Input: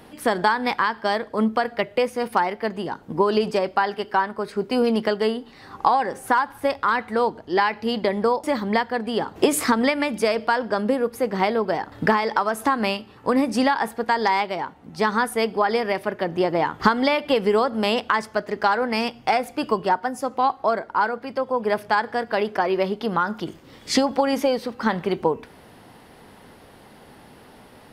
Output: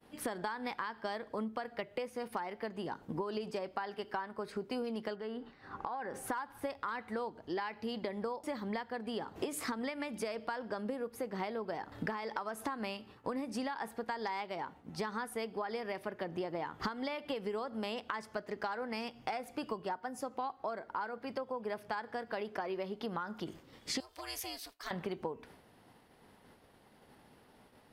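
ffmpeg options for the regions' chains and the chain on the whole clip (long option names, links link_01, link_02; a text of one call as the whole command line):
ffmpeg -i in.wav -filter_complex "[0:a]asettb=1/sr,asplit=3[link_01][link_02][link_03];[link_01]atrim=end=5.154[link_04];[link_02]atrim=start=5.15:end=6.14,asetpts=PTS-STARTPTS,afade=type=in:duration=0.004:curve=qsin,afade=type=out:start_time=0.986:duration=0.004:curve=qsin,lowpass=frequency=2200:poles=1,equalizer=frequency=1500:width_type=o:width=0.42:gain=6,acompressor=threshold=-31dB:ratio=2:attack=3.2:release=140:knee=1:detection=peak[link_05];[link_03]atrim=start=6.136[link_06];[link_04][link_05]acrossfade=duration=0.004:curve1=hsin:curve2=qsin[link_07];[link_07][link_06]acrossfade=duration=0.004:curve1=qsin:curve2=hsin,asettb=1/sr,asplit=3[link_08][link_09][link_10];[link_08]atrim=end=24.004[link_11];[link_09]atrim=start=24:end=24.91,asetpts=PTS-STARTPTS,afade=type=in:duration=0.004:curve=qsin,afade=type=out:start_time=0.906:duration=0.004:curve=qsin,acontrast=67,aderivative,aeval=exprs='val(0)*sin(2*PI*200*n/s)':channel_layout=same[link_12];[link_10]atrim=start=24.906[link_13];[link_11][link_12]acrossfade=duration=0.004:curve1=hsin:curve2=qsin[link_14];[link_14][link_13]acrossfade=duration=0.004:curve1=qsin:curve2=hsin,agate=range=-33dB:threshold=-40dB:ratio=3:detection=peak,acompressor=threshold=-30dB:ratio=5,volume=-6dB" out.wav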